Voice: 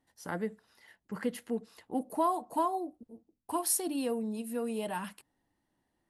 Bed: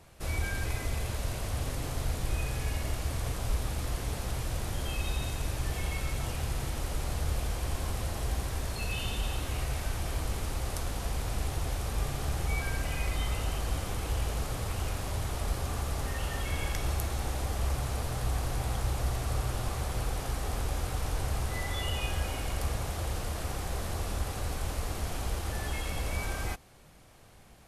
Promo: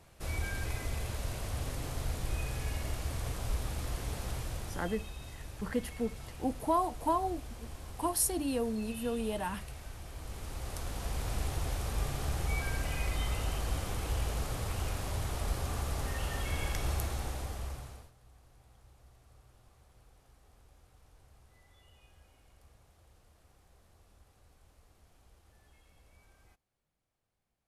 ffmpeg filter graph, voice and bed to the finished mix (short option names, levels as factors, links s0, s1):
-filter_complex "[0:a]adelay=4500,volume=1[s0];[1:a]volume=2.24,afade=t=out:st=4.31:d=0.79:silence=0.354813,afade=t=in:st=10.14:d=1.17:silence=0.298538,afade=t=out:st=17:d=1.12:silence=0.0421697[s1];[s0][s1]amix=inputs=2:normalize=0"